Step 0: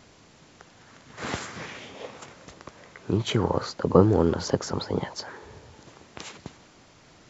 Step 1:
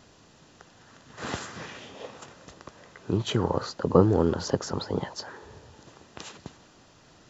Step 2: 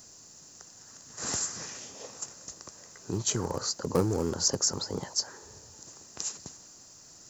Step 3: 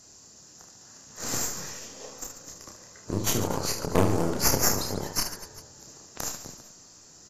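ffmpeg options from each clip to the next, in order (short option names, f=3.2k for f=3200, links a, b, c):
-af "bandreject=f=2.2k:w=7.6,volume=-1.5dB"
-filter_complex "[0:a]asplit=2[a][b];[b]aeval=exprs='0.112*(abs(mod(val(0)/0.112+3,4)-2)-1)':c=same,volume=-9dB[c];[a][c]amix=inputs=2:normalize=0,aexciter=amount=9.1:drive=6.6:freq=5k,volume=-8dB"
-af "aeval=exprs='0.316*(cos(1*acos(clip(val(0)/0.316,-1,1)))-cos(1*PI/2))+0.158*(cos(4*acos(clip(val(0)/0.316,-1,1)))-cos(4*PI/2))':c=same,aecho=1:1:30|75|142.5|243.8|395.6:0.631|0.398|0.251|0.158|0.1,volume=-2dB" -ar 32000 -c:a aac -b:a 48k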